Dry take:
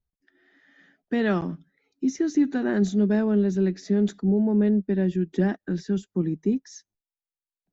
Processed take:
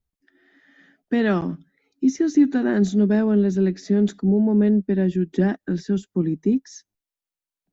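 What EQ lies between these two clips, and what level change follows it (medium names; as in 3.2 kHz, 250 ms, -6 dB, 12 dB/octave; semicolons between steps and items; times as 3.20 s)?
peaking EQ 270 Hz +3.5 dB 0.41 oct; +2.5 dB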